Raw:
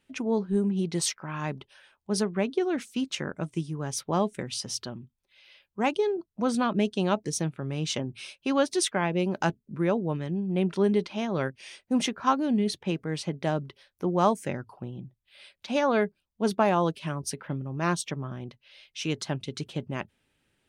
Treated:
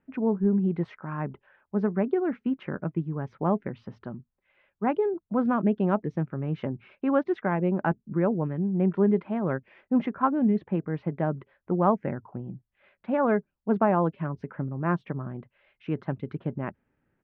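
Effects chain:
low-pass filter 1,800 Hz 24 dB per octave
parametric band 200 Hz +3 dB 1.1 octaves
tempo change 1.2×

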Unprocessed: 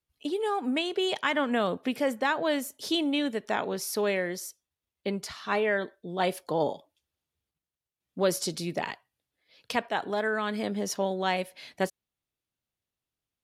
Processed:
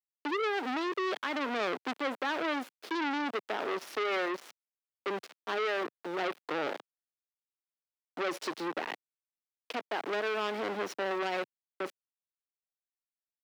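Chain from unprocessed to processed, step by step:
reversed playback
upward compression, threshold −33 dBFS
reversed playback
parametric band 330 Hz +8.5 dB 1.1 octaves
centre clipping without the shift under −31 dBFS
three-way crossover with the lows and the highs turned down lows −23 dB, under 260 Hz, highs −16 dB, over 4,100 Hz
brickwall limiter −19.5 dBFS, peak gain reduction 8 dB
high-pass filter 130 Hz 24 dB per octave
saturating transformer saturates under 1,900 Hz

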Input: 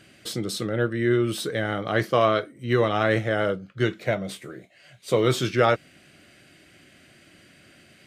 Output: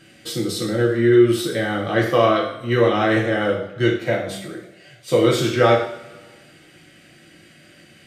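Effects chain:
coupled-rooms reverb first 0.56 s, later 1.7 s, from −18 dB, DRR −2 dB

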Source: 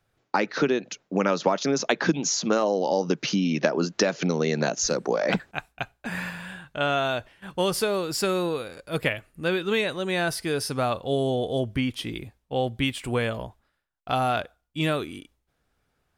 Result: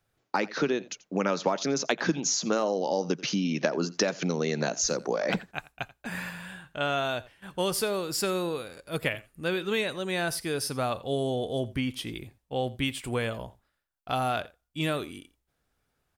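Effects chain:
high-shelf EQ 6,700 Hz +6 dB
single-tap delay 86 ms −20.5 dB
level −4 dB

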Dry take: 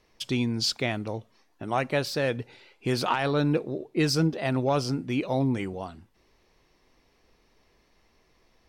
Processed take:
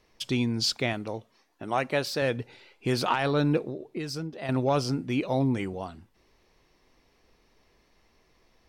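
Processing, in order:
0:00.93–0:02.22: low-shelf EQ 130 Hz −9 dB
0:03.69–0:04.49: downward compressor 6 to 1, threshold −32 dBFS, peak gain reduction 12 dB

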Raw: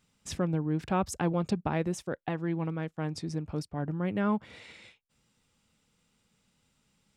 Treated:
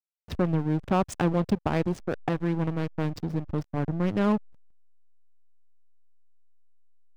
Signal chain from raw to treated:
in parallel at +2 dB: downward compressor 8 to 1, threshold −37 dBFS, peak gain reduction 14 dB
on the sum: low-pass that shuts in the quiet parts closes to 2,200 Hz, open at −23 dBFS
slack as between gear wheels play −27.5 dBFS
one half of a high-frequency compander decoder only
level +2.5 dB

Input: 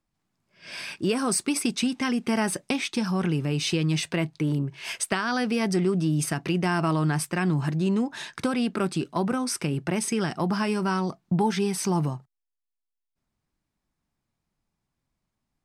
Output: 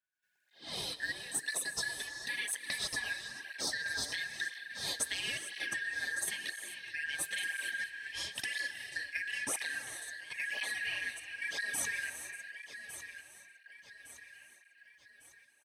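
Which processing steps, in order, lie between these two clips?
band-splitting scrambler in four parts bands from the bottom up 4123
high-shelf EQ 11,000 Hz +11 dB
downward compressor, threshold −28 dBFS, peak gain reduction 9.5 dB
dynamic equaliser 1,500 Hz, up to −5 dB, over −42 dBFS, Q 1.1
repeating echo 1,157 ms, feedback 47%, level −11.5 dB
gate pattern ".xxxx.xxx.xxxx." 67 BPM −12 dB
on a send at −8 dB: convolution reverb, pre-delay 3 ms
on the sum: through-zero flanger with one copy inverted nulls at 0.99 Hz, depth 6.2 ms

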